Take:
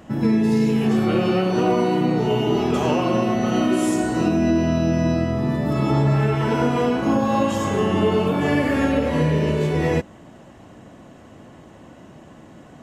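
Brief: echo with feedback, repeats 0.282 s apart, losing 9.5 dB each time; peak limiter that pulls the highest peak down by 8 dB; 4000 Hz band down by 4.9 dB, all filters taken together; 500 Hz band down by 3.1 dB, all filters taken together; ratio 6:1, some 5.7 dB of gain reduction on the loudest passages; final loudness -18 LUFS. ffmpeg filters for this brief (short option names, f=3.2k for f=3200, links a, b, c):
-af "equalizer=f=500:t=o:g=-4,equalizer=f=4k:t=o:g=-7.5,acompressor=threshold=-22dB:ratio=6,alimiter=limit=-22dB:level=0:latency=1,aecho=1:1:282|564|846|1128:0.335|0.111|0.0365|0.012,volume=11.5dB"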